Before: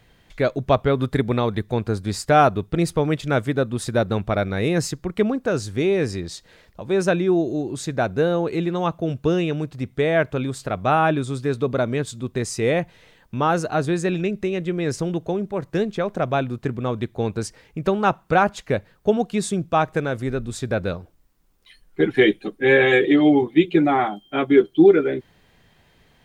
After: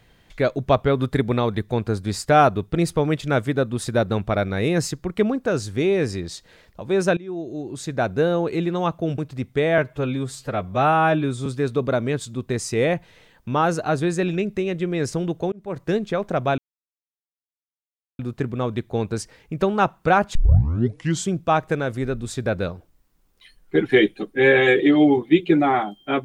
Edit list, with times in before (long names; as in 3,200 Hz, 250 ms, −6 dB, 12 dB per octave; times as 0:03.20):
0:07.17–0:08.07: fade in, from −20 dB
0:09.18–0:09.60: remove
0:10.20–0:11.32: time-stretch 1.5×
0:15.38–0:15.66: fade in
0:16.44: splice in silence 1.61 s
0:18.60: tape start 0.96 s